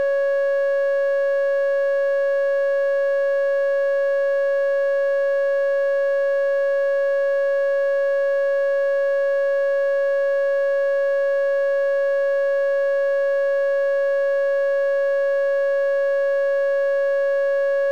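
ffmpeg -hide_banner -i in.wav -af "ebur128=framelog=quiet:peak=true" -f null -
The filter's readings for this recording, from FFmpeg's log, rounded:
Integrated loudness:
  I:         -20.0 LUFS
  Threshold: -30.0 LUFS
Loudness range:
  LRA:         0.0 LU
  Threshold: -40.0 LUFS
  LRA low:   -20.0 LUFS
  LRA high:  -20.0 LUFS
True peak:
  Peak:      -17.5 dBFS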